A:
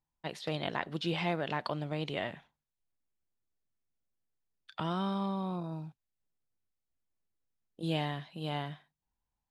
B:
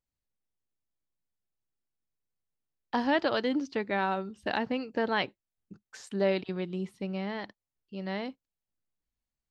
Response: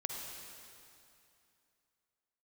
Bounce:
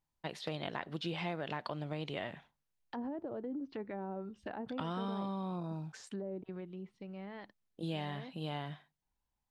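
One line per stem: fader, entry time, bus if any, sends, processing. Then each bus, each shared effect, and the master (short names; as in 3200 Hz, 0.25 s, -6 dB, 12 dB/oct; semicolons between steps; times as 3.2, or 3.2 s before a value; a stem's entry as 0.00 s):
+0.5 dB, 0.00 s, no send, high shelf 7200 Hz -5 dB
6.32 s -4.5 dB -> 6.76 s -11 dB, 0.00 s, no send, treble ducked by the level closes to 490 Hz, closed at -24.5 dBFS; limiter -27.5 dBFS, peak gain reduction 10.5 dB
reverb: off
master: compressor 2.5:1, threshold -37 dBFS, peak gain reduction 7.5 dB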